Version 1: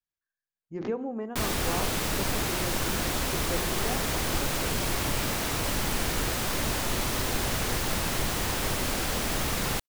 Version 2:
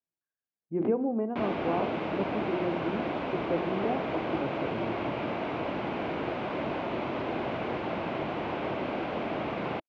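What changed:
speech: add low shelf 270 Hz +10 dB; master: add speaker cabinet 180–2400 Hz, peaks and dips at 330 Hz +4 dB, 650 Hz +5 dB, 1300 Hz -4 dB, 1800 Hz -9 dB

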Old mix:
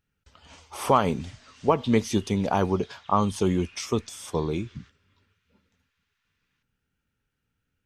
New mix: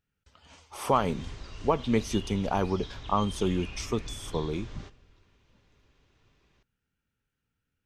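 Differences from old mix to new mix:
speech -4.0 dB; background: remove ladder high-pass 1200 Hz, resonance 35%

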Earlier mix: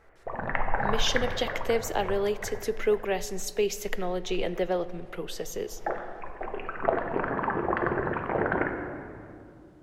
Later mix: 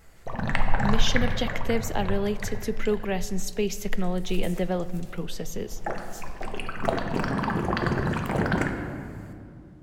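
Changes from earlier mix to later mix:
background: remove LPF 2100 Hz 24 dB/oct; master: add resonant low shelf 280 Hz +8 dB, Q 1.5

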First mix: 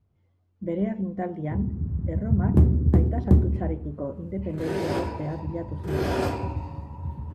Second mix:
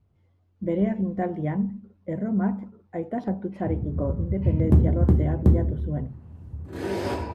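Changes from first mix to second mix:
speech +3.0 dB; background: entry +2.15 s

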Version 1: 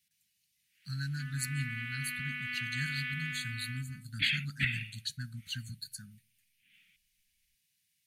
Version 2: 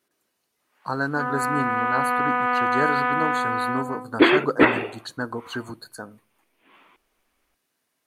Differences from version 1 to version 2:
second sound +5.0 dB; master: remove inverse Chebyshev band-stop 340–1100 Hz, stop band 50 dB

